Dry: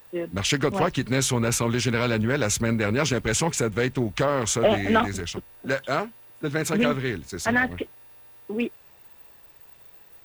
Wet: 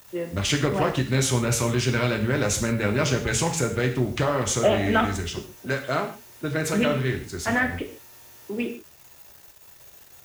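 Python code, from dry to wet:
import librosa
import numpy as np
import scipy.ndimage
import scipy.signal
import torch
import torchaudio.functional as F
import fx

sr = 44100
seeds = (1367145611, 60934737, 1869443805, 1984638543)

y = fx.highpass(x, sr, hz=64.0, slope=6)
y = fx.low_shelf(y, sr, hz=110.0, db=6.5)
y = fx.quant_dither(y, sr, seeds[0], bits=8, dither='none')
y = fx.rev_gated(y, sr, seeds[1], gate_ms=180, shape='falling', drr_db=3.5)
y = F.gain(torch.from_numpy(y), -2.0).numpy()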